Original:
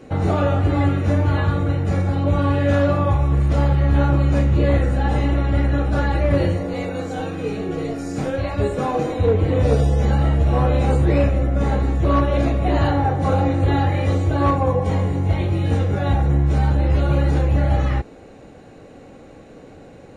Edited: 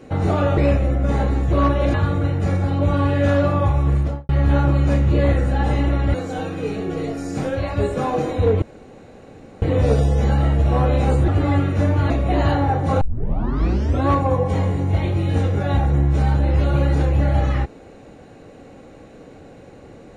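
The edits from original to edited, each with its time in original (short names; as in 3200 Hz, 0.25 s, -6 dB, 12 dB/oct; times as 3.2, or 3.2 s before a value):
0.57–1.39 swap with 11.09–12.46
3.38–3.74 studio fade out
5.59–6.95 cut
9.43 insert room tone 1.00 s
13.37 tape start 1.07 s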